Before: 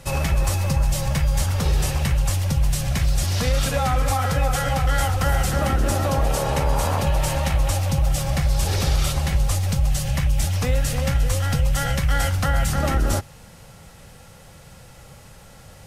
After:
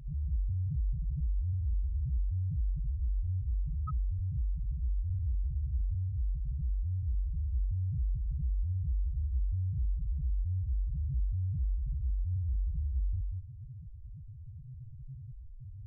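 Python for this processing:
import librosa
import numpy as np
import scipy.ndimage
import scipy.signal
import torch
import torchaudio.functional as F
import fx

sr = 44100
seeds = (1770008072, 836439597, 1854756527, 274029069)

y = scipy.signal.sosfilt(scipy.signal.ellip(3, 1.0, 40, [140.0, 1100.0], 'bandstop', fs=sr, output='sos'), x)
y = y + 10.0 ** (-7.5 / 20.0) * np.pad(y, (int(190 * sr / 1000.0), 0))[:len(y)]
y = fx.spec_topn(y, sr, count=1)
y = fx.env_flatten(y, sr, amount_pct=50)
y = y * 10.0 ** (-7.5 / 20.0)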